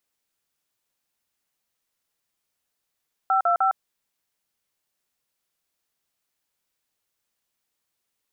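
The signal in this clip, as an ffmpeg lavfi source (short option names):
-f lavfi -i "aevalsrc='0.1*clip(min(mod(t,0.152),0.108-mod(t,0.152))/0.002,0,1)*(eq(floor(t/0.152),0)*(sin(2*PI*770*mod(t,0.152))+sin(2*PI*1336*mod(t,0.152)))+eq(floor(t/0.152),1)*(sin(2*PI*697*mod(t,0.152))+sin(2*PI*1336*mod(t,0.152)))+eq(floor(t/0.152),2)*(sin(2*PI*770*mod(t,0.152))+sin(2*PI*1336*mod(t,0.152))))':d=0.456:s=44100"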